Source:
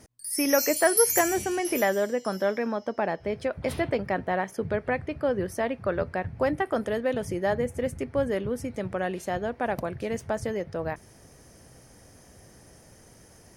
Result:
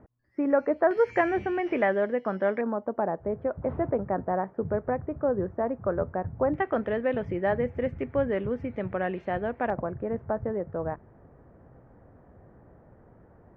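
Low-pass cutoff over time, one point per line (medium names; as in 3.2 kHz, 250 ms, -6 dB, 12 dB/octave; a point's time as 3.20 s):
low-pass 24 dB/octave
1.4 kHz
from 0.91 s 2.4 kHz
from 2.61 s 1.3 kHz
from 6.54 s 2.6 kHz
from 9.70 s 1.4 kHz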